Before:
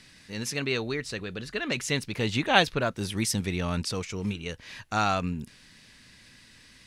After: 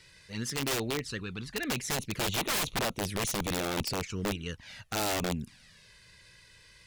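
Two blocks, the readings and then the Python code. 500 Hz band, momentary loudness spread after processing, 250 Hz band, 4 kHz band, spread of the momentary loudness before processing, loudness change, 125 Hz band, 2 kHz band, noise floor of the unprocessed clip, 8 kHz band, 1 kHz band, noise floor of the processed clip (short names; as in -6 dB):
-4.0 dB, 9 LU, -4.5 dB, -2.5 dB, 14 LU, -3.5 dB, -5.0 dB, -5.5 dB, -55 dBFS, +1.0 dB, -6.5 dB, -58 dBFS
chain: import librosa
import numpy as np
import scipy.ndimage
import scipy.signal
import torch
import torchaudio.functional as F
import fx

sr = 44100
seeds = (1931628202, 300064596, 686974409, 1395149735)

y = fx.env_flanger(x, sr, rest_ms=2.2, full_db=-25.5)
y = (np.mod(10.0 ** (24.0 / 20.0) * y + 1.0, 2.0) - 1.0) / 10.0 ** (24.0 / 20.0)
y = fx.cheby_harmonics(y, sr, harmonics=(4,), levels_db=(-31,), full_scale_db=-24.0)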